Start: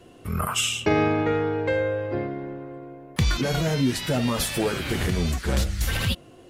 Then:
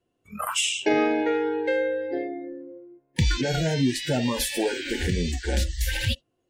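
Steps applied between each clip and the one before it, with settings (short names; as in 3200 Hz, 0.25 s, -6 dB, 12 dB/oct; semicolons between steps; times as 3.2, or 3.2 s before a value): spectral noise reduction 26 dB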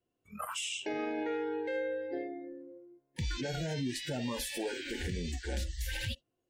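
limiter -18.5 dBFS, peak gain reduction 7.5 dB; gain -8.5 dB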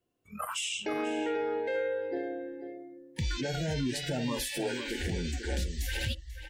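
outdoor echo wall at 84 m, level -9 dB; gain +3 dB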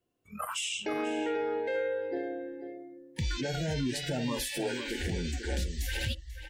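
nothing audible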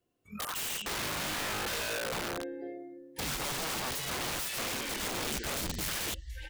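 wrapped overs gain 31 dB; gain +1 dB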